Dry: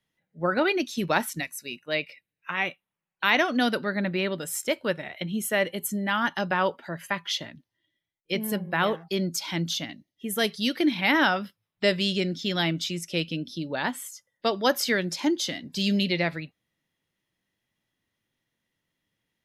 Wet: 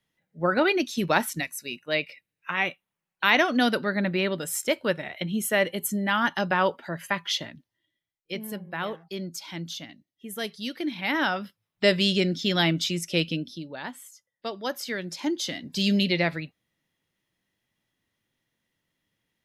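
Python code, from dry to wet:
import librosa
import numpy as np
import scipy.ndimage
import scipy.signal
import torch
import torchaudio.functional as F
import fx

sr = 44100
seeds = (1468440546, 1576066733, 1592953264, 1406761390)

y = fx.gain(x, sr, db=fx.line((7.42, 1.5), (8.56, -7.0), (10.85, -7.0), (11.96, 3.0), (13.31, 3.0), (13.73, -8.0), (14.83, -8.0), (15.71, 1.5)))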